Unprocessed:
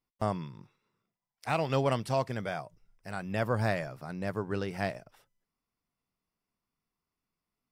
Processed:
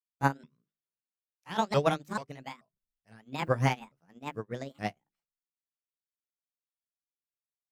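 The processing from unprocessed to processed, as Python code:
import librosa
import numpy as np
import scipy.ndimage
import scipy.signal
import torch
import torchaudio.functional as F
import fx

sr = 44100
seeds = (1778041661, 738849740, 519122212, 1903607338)

y = fx.pitch_ramps(x, sr, semitones=8.0, every_ms=435)
y = fx.rotary(y, sr, hz=6.7)
y = fx.hum_notches(y, sr, base_hz=50, count=8)
y = fx.upward_expand(y, sr, threshold_db=-51.0, expansion=2.5)
y = y * 10.0 ** (8.0 / 20.0)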